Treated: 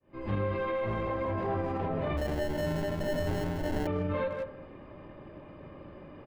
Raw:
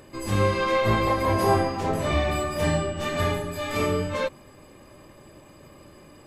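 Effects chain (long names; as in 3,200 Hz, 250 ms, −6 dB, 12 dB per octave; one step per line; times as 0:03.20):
fade in at the beginning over 0.59 s
convolution reverb RT60 1.0 s, pre-delay 3 ms, DRR 12.5 dB
hard clipping −15 dBFS, distortion −23 dB
low-pass filter 3,400 Hz 24 dB per octave
0:02.17–0:03.87: sample-rate reduction 1,200 Hz, jitter 0%
high-shelf EQ 2,500 Hz −11 dB
far-end echo of a speakerphone 160 ms, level −12 dB
brickwall limiter −24 dBFS, peak gain reduction 9.5 dB
speech leveller 0.5 s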